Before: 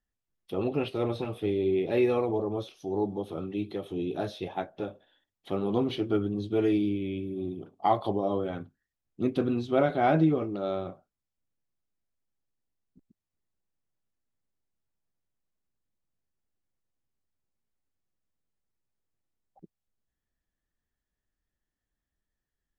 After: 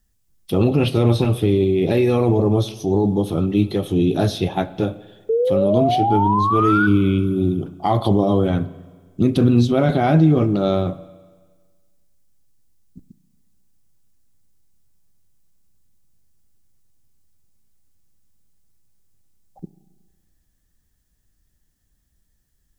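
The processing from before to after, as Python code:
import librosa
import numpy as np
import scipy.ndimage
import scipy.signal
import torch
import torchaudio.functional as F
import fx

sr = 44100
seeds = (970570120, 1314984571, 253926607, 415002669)

p1 = fx.spec_paint(x, sr, seeds[0], shape='rise', start_s=5.29, length_s=1.58, low_hz=440.0, high_hz=1500.0, level_db=-23.0)
p2 = fx.over_compress(p1, sr, threshold_db=-29.0, ratio=-0.5)
p3 = p1 + (p2 * librosa.db_to_amplitude(-2.0))
p4 = fx.bass_treble(p3, sr, bass_db=11, treble_db=11)
p5 = fx.rev_spring(p4, sr, rt60_s=1.5, pass_ms=(33, 46), chirp_ms=40, drr_db=16.0)
y = p5 * librosa.db_to_amplitude(3.0)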